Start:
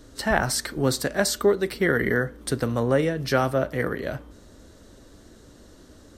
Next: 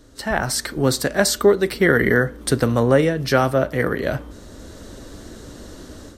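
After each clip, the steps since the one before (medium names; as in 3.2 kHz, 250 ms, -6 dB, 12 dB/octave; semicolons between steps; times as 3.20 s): level rider gain up to 12.5 dB; trim -1 dB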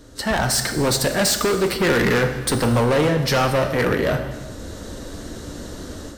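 overload inside the chain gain 20 dB; gated-style reverb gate 450 ms falling, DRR 6.5 dB; trim +4 dB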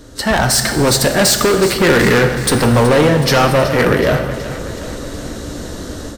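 feedback delay 373 ms, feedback 58%, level -13.5 dB; trim +6.5 dB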